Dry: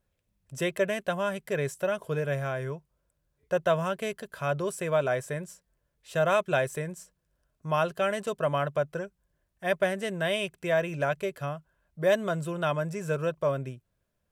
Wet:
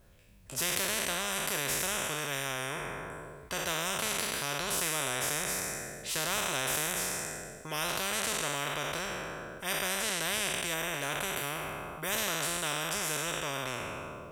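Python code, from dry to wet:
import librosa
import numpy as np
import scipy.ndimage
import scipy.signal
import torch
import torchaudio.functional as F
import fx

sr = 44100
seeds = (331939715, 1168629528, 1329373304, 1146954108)

y = fx.spec_trails(x, sr, decay_s=1.31)
y = fx.peak_eq(y, sr, hz=4500.0, db=-8.5, octaves=1.0, at=(10.74, 12.18))
y = fx.spectral_comp(y, sr, ratio=4.0)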